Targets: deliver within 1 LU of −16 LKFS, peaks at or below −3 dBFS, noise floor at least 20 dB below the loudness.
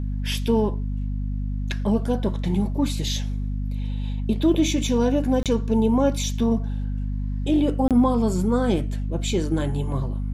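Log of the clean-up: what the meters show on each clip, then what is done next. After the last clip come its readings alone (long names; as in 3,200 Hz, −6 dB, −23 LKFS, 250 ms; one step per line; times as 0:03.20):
number of dropouts 2; longest dropout 27 ms; mains hum 50 Hz; hum harmonics up to 250 Hz; level of the hum −24 dBFS; integrated loudness −23.5 LKFS; sample peak −8.5 dBFS; target loudness −16.0 LKFS
→ repair the gap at 0:05.43/0:07.88, 27 ms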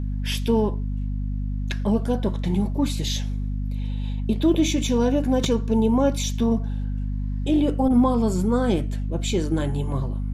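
number of dropouts 0; mains hum 50 Hz; hum harmonics up to 250 Hz; level of the hum −24 dBFS
→ hum removal 50 Hz, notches 5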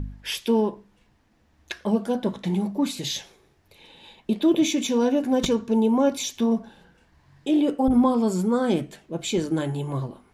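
mains hum none found; integrated loudness −24.0 LKFS; sample peak −8.5 dBFS; target loudness −16.0 LKFS
→ level +8 dB
brickwall limiter −3 dBFS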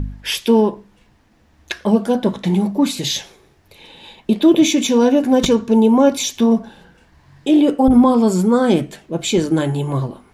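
integrated loudness −16.0 LKFS; sample peak −3.0 dBFS; background noise floor −54 dBFS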